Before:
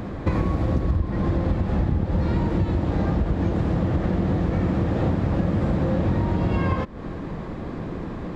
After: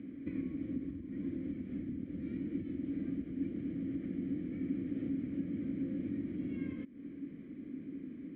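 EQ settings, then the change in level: vowel filter i; air absorption 470 m; -2.5 dB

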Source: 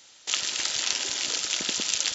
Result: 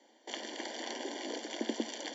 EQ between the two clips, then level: running mean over 34 samples; rippled Chebyshev high-pass 220 Hz, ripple 3 dB; +8.0 dB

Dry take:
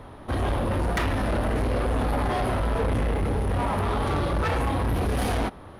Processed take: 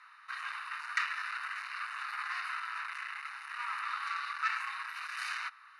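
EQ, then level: steep high-pass 1200 Hz 48 dB/oct; Butterworth band-stop 3300 Hz, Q 4.9; air absorption 91 m; 0.0 dB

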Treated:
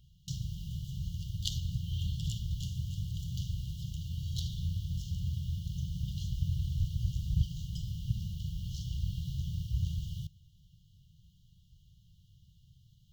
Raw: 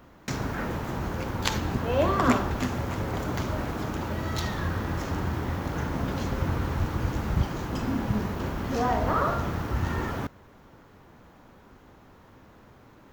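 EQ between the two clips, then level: brick-wall FIR band-stop 180–2800 Hz; high shelf 5500 Hz -6 dB; -3.0 dB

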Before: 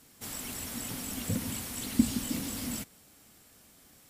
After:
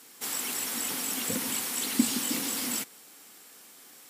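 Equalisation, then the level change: HPF 370 Hz 12 dB/oct; bell 620 Hz -7 dB 0.3 oct; +7.5 dB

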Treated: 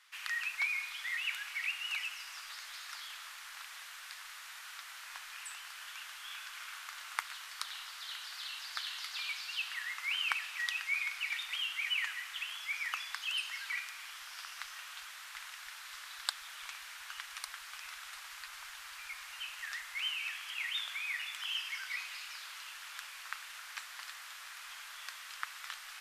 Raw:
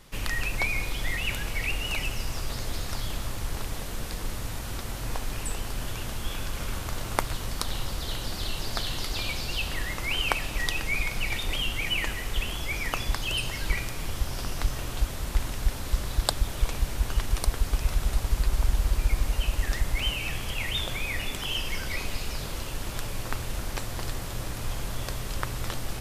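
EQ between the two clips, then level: inverse Chebyshev high-pass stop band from 310 Hz, stop band 70 dB; tilt -3.5 dB/oct; 0.0 dB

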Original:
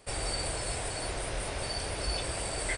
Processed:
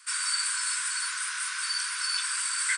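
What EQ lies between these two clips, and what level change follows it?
Chebyshev high-pass 980 Hz, order 10; bell 1500 Hz +13 dB 0.32 oct; bell 7100 Hz +8.5 dB 1.6 oct; +1.5 dB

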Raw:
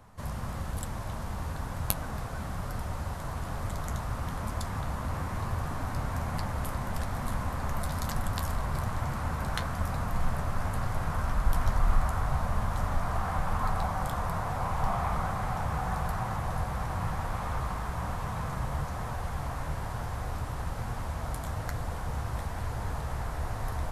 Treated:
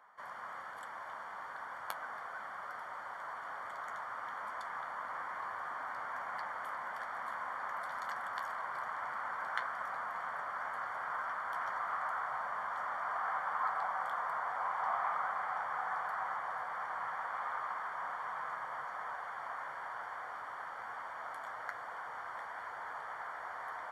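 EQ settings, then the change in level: polynomial smoothing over 41 samples; HPF 1300 Hz 12 dB/oct; +4.5 dB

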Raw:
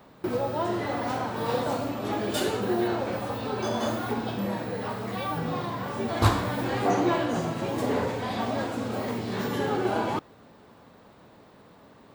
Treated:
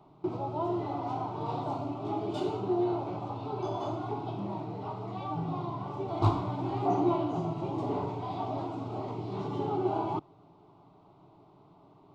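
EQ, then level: tape spacing loss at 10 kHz 29 dB; fixed phaser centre 340 Hz, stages 8; 0.0 dB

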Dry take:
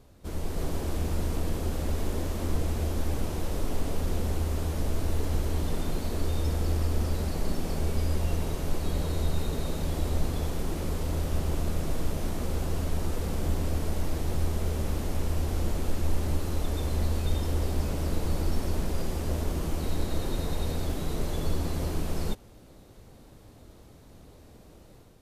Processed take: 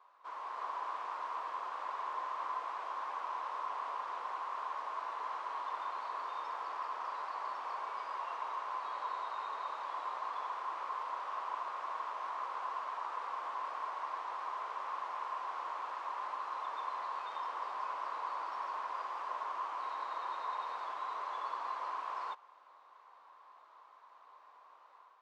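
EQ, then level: ladder high-pass 990 Hz, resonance 80%; tape spacing loss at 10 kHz 34 dB; +12.5 dB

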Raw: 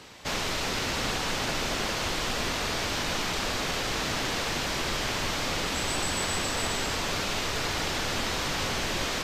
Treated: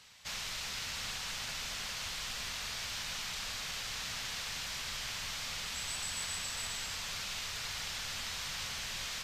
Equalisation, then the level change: passive tone stack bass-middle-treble 5-5-5; bell 320 Hz -10.5 dB 0.45 oct; 0.0 dB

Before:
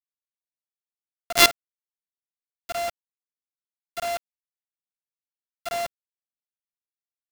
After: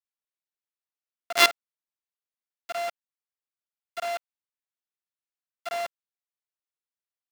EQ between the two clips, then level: HPF 760 Hz 6 dB/oct; high shelf 4200 Hz -10.5 dB; +1.5 dB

